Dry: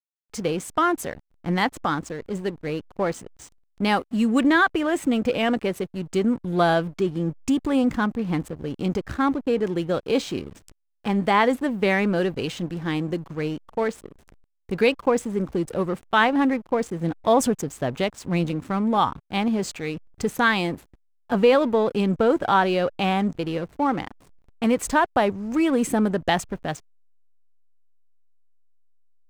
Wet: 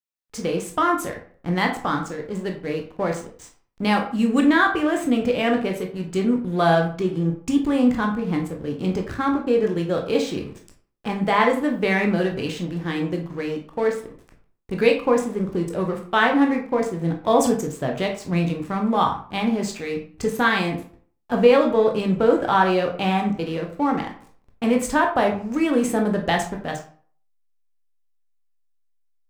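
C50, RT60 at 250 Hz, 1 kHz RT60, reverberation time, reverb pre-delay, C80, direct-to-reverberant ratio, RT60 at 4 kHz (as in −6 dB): 9.0 dB, 0.50 s, 0.45 s, 0.45 s, 15 ms, 12.5 dB, 1.5 dB, 0.35 s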